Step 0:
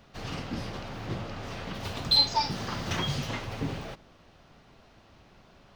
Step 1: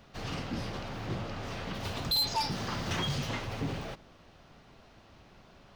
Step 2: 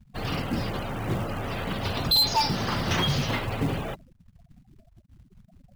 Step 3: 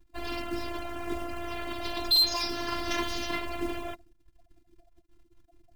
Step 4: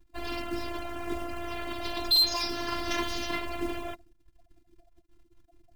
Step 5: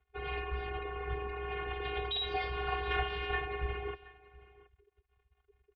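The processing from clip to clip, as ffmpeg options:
-af "asoftclip=type=tanh:threshold=-25dB"
-filter_complex "[0:a]afftfilt=real='re*gte(hypot(re,im),0.00708)':imag='im*gte(hypot(re,im),0.00708)':win_size=1024:overlap=0.75,acrossover=split=4900[a][b];[a]acrusher=bits=5:mode=log:mix=0:aa=0.000001[c];[c][b]amix=inputs=2:normalize=0,volume=7.5dB"
-af "afftfilt=real='hypot(re,im)*cos(PI*b)':imag='0':win_size=512:overlap=0.75"
-af anull
-af "highpass=f=330:t=q:w=0.5412,highpass=f=330:t=q:w=1.307,lowpass=f=3.2k:t=q:w=0.5176,lowpass=f=3.2k:t=q:w=0.7071,lowpass=f=3.2k:t=q:w=1.932,afreqshift=-280,aecho=1:1:724:0.0891"

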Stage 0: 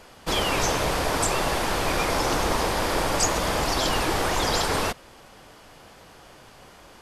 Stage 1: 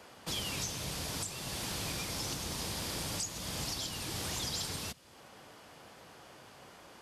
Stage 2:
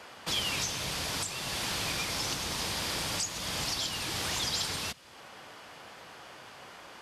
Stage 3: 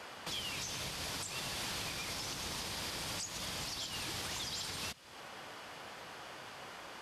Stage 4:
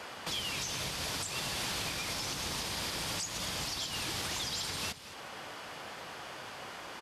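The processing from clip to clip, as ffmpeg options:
-filter_complex "[0:a]highpass=91,acrossover=split=210|3000[a][b][c];[b]acompressor=threshold=-44dB:ratio=3[d];[a][d][c]amix=inputs=3:normalize=0,alimiter=limit=-21dB:level=0:latency=1:release=390,volume=-5dB"
-af "equalizer=f=2k:w=0.32:g=8"
-af "alimiter=level_in=6.5dB:limit=-24dB:level=0:latency=1:release=270,volume=-6.5dB"
-af "aecho=1:1:223:0.188,volume=4dB"

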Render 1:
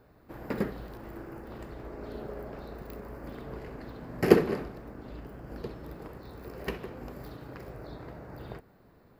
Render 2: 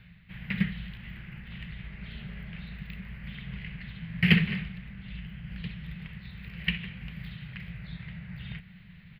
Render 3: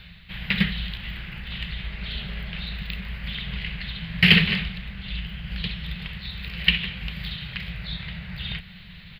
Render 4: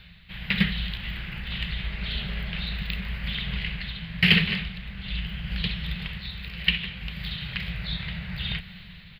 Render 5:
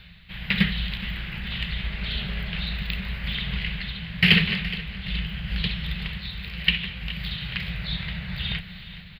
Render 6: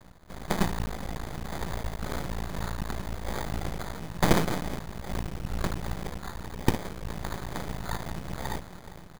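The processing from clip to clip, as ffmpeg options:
-af "firequalizer=gain_entry='entry(120,0);entry(180,9);entry(270,-25);entry(460,-24);entry(1200,-13);entry(2000,9);entry(3100,12);entry(5700,-21);entry(12000,-15)':delay=0.05:min_phase=1,areverse,acompressor=mode=upward:threshold=-46dB:ratio=2.5,areverse,volume=3.5dB"
-af "equalizer=f=125:t=o:w=1:g=-8,equalizer=f=250:t=o:w=1:g=-7,equalizer=f=2k:t=o:w=1:g=-5,equalizer=f=4k:t=o:w=1:g=10,alimiter=level_in=12.5dB:limit=-1dB:release=50:level=0:latency=1,volume=-1dB"
-af "dynaudnorm=f=150:g=7:m=5.5dB,volume=-4dB"
-af "aecho=1:1:419|838|1257|1676|2095:0.168|0.0873|0.0454|0.0236|0.0123,volume=1.5dB"
-af "acrusher=samples=16:mix=1:aa=0.000001,aeval=exprs='max(val(0),0)':c=same"

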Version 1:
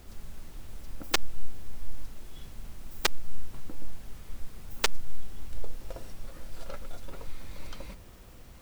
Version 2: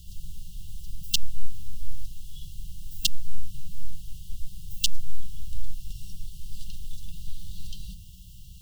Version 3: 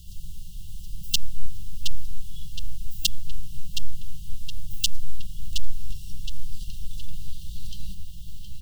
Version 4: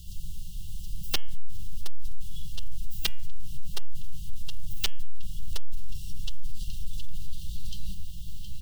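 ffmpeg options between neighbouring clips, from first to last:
-af "afftfilt=real='re*(1-between(b*sr/4096,200,2700))':imag='im*(1-between(b*sr/4096,200,2700))':win_size=4096:overlap=0.75,volume=5dB"
-filter_complex "[0:a]asplit=2[a][b];[b]adelay=718,lowpass=f=4.1k:p=1,volume=-5.5dB,asplit=2[c][d];[d]adelay=718,lowpass=f=4.1k:p=1,volume=0.54,asplit=2[e][f];[f]adelay=718,lowpass=f=4.1k:p=1,volume=0.54,asplit=2[g][h];[h]adelay=718,lowpass=f=4.1k:p=1,volume=0.54,asplit=2[i][j];[j]adelay=718,lowpass=f=4.1k:p=1,volume=0.54,asplit=2[k][l];[l]adelay=718,lowpass=f=4.1k:p=1,volume=0.54,asplit=2[m][n];[n]adelay=718,lowpass=f=4.1k:p=1,volume=0.54[o];[a][c][e][g][i][k][m][o]amix=inputs=8:normalize=0,volume=1dB"
-af "asoftclip=type=tanh:threshold=-15.5dB,bandreject=f=218.4:t=h:w=4,bandreject=f=436.8:t=h:w=4,bandreject=f=655.2:t=h:w=4,bandreject=f=873.6:t=h:w=4,bandreject=f=1.092k:t=h:w=4,bandreject=f=1.3104k:t=h:w=4,bandreject=f=1.5288k:t=h:w=4,bandreject=f=1.7472k:t=h:w=4,bandreject=f=1.9656k:t=h:w=4,bandreject=f=2.184k:t=h:w=4,bandreject=f=2.4024k:t=h:w=4,bandreject=f=2.6208k:t=h:w=4,bandreject=f=2.8392k:t=h:w=4,bandreject=f=3.0576k:t=h:w=4,bandreject=f=3.276k:t=h:w=4,volume=1dB"

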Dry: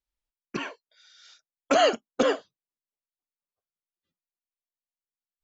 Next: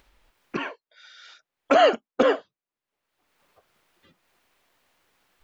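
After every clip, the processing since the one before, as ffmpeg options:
-af "acompressor=mode=upward:threshold=-39dB:ratio=2.5,bass=f=250:g=-4,treble=f=4k:g=-14,volume=4dB"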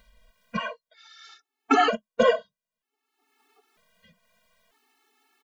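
-af "aecho=1:1:4.6:0.53,afftfilt=real='re*gt(sin(2*PI*0.53*pts/sr)*(1-2*mod(floor(b*sr/1024/230),2)),0)':imag='im*gt(sin(2*PI*0.53*pts/sr)*(1-2*mod(floor(b*sr/1024/230),2)),0)':win_size=1024:overlap=0.75,volume=2.5dB"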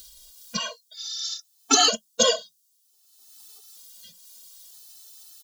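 -af "aexciter=amount=13.3:drive=8.6:freq=3.5k,volume=-3.5dB"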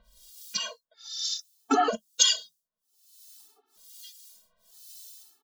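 -filter_complex "[0:a]acrossover=split=1700[a][b];[a]aeval=exprs='val(0)*(1-1/2+1/2*cos(2*PI*1.1*n/s))':c=same[c];[b]aeval=exprs='val(0)*(1-1/2-1/2*cos(2*PI*1.1*n/s))':c=same[d];[c][d]amix=inputs=2:normalize=0,volume=1.5dB"

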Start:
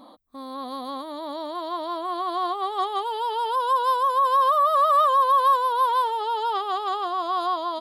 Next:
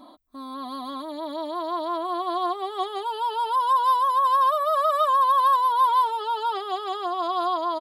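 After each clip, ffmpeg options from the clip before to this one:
-af "aecho=1:1:3:0.69,volume=-2dB"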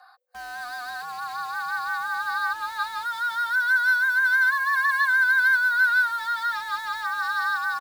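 -filter_complex "[0:a]afreqshift=480,asplit=2[a][b];[b]acrusher=bits=5:mix=0:aa=0.000001,volume=-5dB[c];[a][c]amix=inputs=2:normalize=0,volume=-4.5dB"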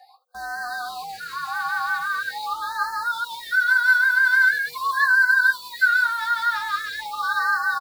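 -filter_complex "[0:a]asplit=2[a][b];[b]asoftclip=type=tanh:threshold=-24dB,volume=-7dB[c];[a][c]amix=inputs=2:normalize=0,aecho=1:1:19|80:0.501|0.126,afftfilt=real='re*(1-between(b*sr/1024,440*pow(2900/440,0.5+0.5*sin(2*PI*0.43*pts/sr))/1.41,440*pow(2900/440,0.5+0.5*sin(2*PI*0.43*pts/sr))*1.41))':imag='im*(1-between(b*sr/1024,440*pow(2900/440,0.5+0.5*sin(2*PI*0.43*pts/sr))/1.41,440*pow(2900/440,0.5+0.5*sin(2*PI*0.43*pts/sr))*1.41))':win_size=1024:overlap=0.75"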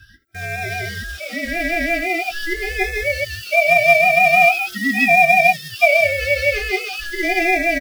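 -filter_complex "[0:a]aeval=exprs='val(0)*sin(2*PI*840*n/s)':c=same,asplit=2[a][b];[b]acrusher=bits=3:mode=log:mix=0:aa=0.000001,volume=-8dB[c];[a][c]amix=inputs=2:normalize=0,asuperstop=centerf=950:order=20:qfactor=2.4,volume=5dB"

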